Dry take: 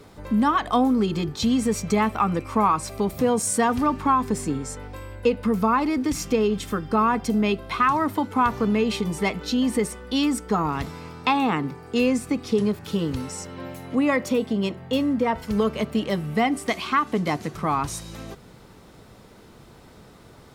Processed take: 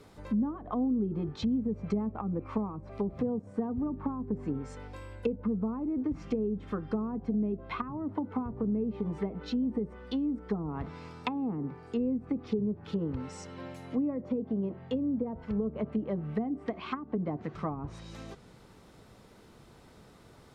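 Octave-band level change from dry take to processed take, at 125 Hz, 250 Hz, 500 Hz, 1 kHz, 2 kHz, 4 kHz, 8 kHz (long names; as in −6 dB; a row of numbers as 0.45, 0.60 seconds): −7.0 dB, −7.5 dB, −10.5 dB, −19.0 dB, −19.5 dB, −18.0 dB, below −25 dB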